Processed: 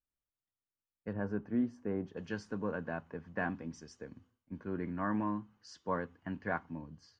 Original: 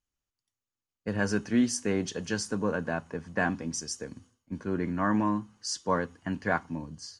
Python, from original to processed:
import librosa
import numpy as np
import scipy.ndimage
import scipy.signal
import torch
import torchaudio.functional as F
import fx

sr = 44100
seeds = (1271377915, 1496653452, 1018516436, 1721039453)

y = fx.lowpass(x, sr, hz=fx.steps((0.0, 2200.0), (1.13, 1100.0), (2.17, 2700.0)), slope=12)
y = y * librosa.db_to_amplitude(-7.5)